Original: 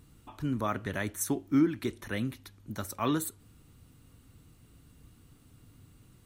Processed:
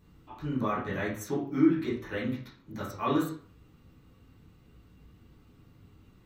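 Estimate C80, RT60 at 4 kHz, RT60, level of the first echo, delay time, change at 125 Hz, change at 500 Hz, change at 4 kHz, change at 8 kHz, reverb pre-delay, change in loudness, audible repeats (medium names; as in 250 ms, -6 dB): 10.5 dB, 0.35 s, 0.50 s, no echo, no echo, 0.0 dB, +3.5 dB, -2.0 dB, -11.0 dB, 6 ms, +1.5 dB, no echo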